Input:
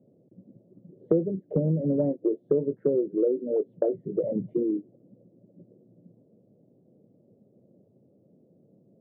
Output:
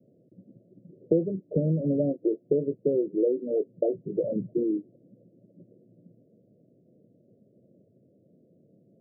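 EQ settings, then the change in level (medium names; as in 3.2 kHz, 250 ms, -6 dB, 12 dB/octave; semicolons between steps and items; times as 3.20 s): Chebyshev low-pass 710 Hz, order 10; 0.0 dB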